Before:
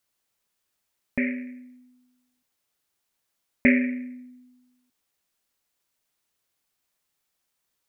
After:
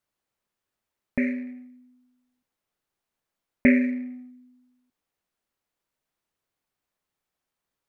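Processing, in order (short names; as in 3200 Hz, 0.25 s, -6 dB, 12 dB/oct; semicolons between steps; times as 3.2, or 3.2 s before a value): high shelf 2500 Hz -11 dB; in parallel at -12 dB: backlash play -39.5 dBFS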